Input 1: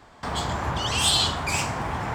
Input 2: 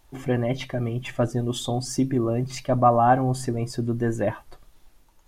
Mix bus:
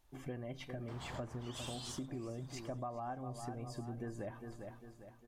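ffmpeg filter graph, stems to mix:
ffmpeg -i stem1.wav -i stem2.wav -filter_complex "[0:a]adelay=650,volume=-8.5dB,afade=type=out:start_time=1.51:duration=0.69:silence=0.251189[link_01];[1:a]volume=-13dB,asplit=3[link_02][link_03][link_04];[link_03]volume=-12dB[link_05];[link_04]apad=whole_len=123233[link_06];[link_01][link_06]sidechaincompress=threshold=-45dB:ratio=8:attack=16:release=1270[link_07];[link_05]aecho=0:1:402|804|1206|1608|2010|2412:1|0.44|0.194|0.0852|0.0375|0.0165[link_08];[link_07][link_02][link_08]amix=inputs=3:normalize=0,acompressor=threshold=-40dB:ratio=6" out.wav

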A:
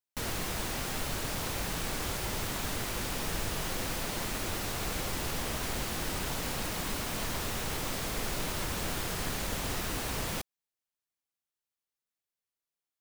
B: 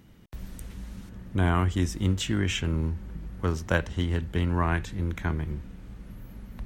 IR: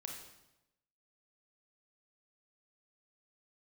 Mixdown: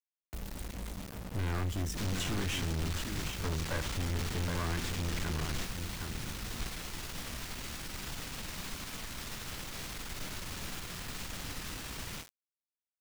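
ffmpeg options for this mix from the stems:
-filter_complex "[0:a]bandreject=frequency=50:width_type=h:width=6,bandreject=frequency=100:width_type=h:width=6,bandreject=frequency=150:width_type=h:width=6,acrossover=split=8100[link_01][link_02];[link_02]acompressor=threshold=-58dB:ratio=4:attack=1:release=60[link_03];[link_01][link_03]amix=inputs=2:normalize=0,equalizer=frequency=560:width=0.68:gain=-8,adelay=1800,volume=0dB,asplit=2[link_04][link_05];[link_05]volume=-4.5dB[link_06];[1:a]volume=-0.5dB,asplit=3[link_07][link_08][link_09];[link_08]volume=-11dB[link_10];[link_09]apad=whole_len=652838[link_11];[link_04][link_11]sidechaingate=range=-11dB:threshold=-37dB:ratio=16:detection=peak[link_12];[2:a]atrim=start_sample=2205[link_13];[link_06][link_13]afir=irnorm=-1:irlink=0[link_14];[link_10]aecho=0:1:766:1[link_15];[link_12][link_07][link_14][link_15]amix=inputs=4:normalize=0,acrusher=bits=6:mix=0:aa=0.000001,aeval=exprs='(tanh(35.5*val(0)+0.4)-tanh(0.4))/35.5':channel_layout=same"

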